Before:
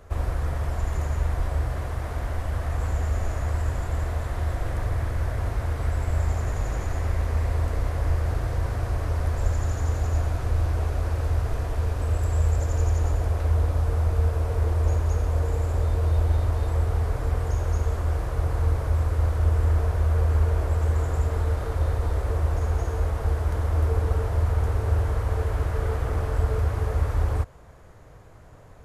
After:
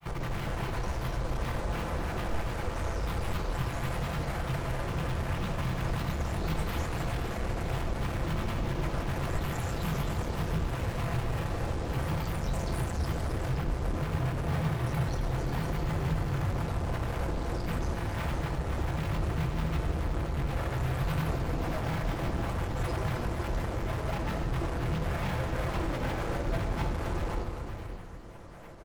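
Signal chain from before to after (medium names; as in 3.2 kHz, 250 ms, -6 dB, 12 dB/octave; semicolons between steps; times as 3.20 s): bass shelf 130 Hz -8.5 dB; granulator, pitch spread up and down by 12 st; hard clipper -34.5 dBFS, distortion -6 dB; multi-tap echo 265/520 ms -10/-9 dB; on a send at -4 dB: reverberation RT60 1.3 s, pre-delay 6 ms; on the sum: trim +2.5 dB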